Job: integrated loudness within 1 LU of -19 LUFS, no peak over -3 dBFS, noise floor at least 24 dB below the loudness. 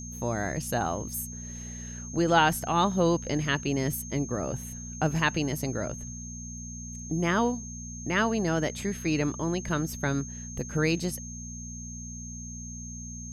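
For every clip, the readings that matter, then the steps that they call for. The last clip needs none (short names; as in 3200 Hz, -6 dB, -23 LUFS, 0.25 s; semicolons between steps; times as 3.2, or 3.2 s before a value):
hum 60 Hz; harmonics up to 240 Hz; hum level -38 dBFS; steady tone 6400 Hz; tone level -41 dBFS; loudness -29.5 LUFS; peak -9.0 dBFS; loudness target -19.0 LUFS
-> de-hum 60 Hz, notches 4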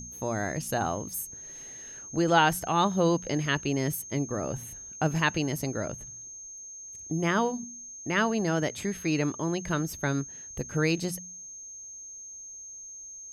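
hum none; steady tone 6400 Hz; tone level -41 dBFS
-> notch 6400 Hz, Q 30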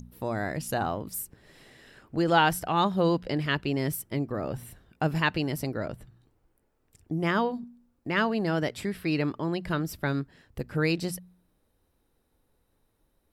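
steady tone none; loudness -28.5 LUFS; peak -9.5 dBFS; loudness target -19.0 LUFS
-> gain +9.5 dB; limiter -3 dBFS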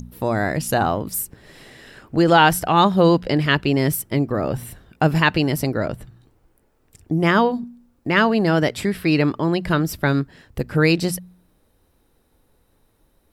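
loudness -19.5 LUFS; peak -3.0 dBFS; noise floor -63 dBFS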